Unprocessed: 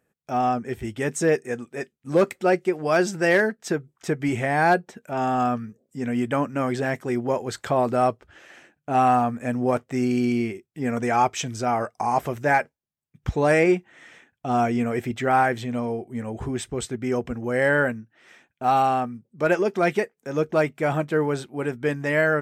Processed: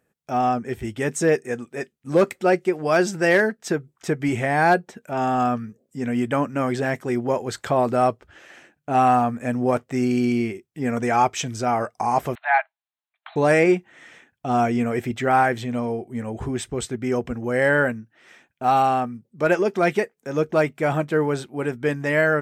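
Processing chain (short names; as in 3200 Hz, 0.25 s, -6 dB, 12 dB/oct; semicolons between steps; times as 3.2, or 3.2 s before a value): 12.35–13.36 brick-wall FIR band-pass 620–4300 Hz; gain +1.5 dB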